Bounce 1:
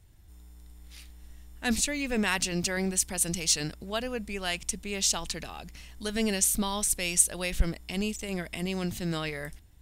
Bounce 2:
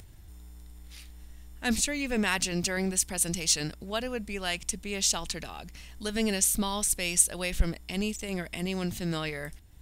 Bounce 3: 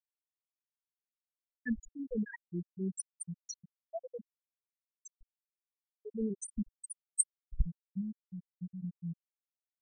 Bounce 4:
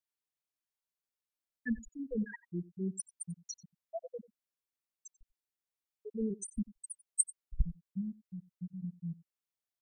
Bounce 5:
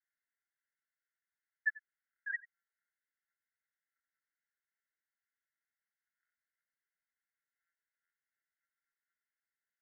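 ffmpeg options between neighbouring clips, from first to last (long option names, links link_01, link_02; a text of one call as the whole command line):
ffmpeg -i in.wav -af "acompressor=mode=upward:threshold=-42dB:ratio=2.5" out.wav
ffmpeg -i in.wav -af "afftfilt=real='re*gte(hypot(re,im),0.251)':imag='im*gte(hypot(re,im),0.251)':win_size=1024:overlap=0.75,volume=-4.5dB" out.wav
ffmpeg -i in.wav -af "aecho=1:1:91:0.0944" out.wav
ffmpeg -i in.wav -af "asuperpass=centerf=1700:order=20:qfactor=2.1,volume=10dB" out.wav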